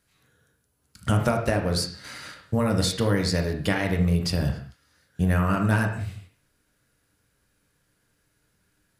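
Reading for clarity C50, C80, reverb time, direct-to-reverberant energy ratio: 7.5 dB, 10.5 dB, non-exponential decay, 2.5 dB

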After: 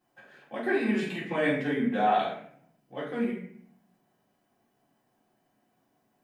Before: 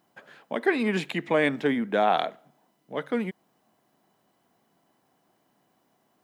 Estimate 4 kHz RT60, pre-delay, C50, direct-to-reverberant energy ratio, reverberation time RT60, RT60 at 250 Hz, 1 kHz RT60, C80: 0.45 s, 3 ms, 3.0 dB, −9.5 dB, 0.60 s, 0.95 s, 0.55 s, 7.5 dB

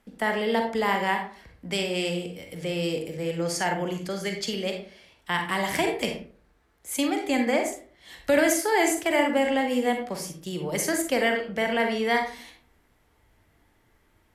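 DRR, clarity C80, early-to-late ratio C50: 3.5 dB, 11.0 dB, 6.0 dB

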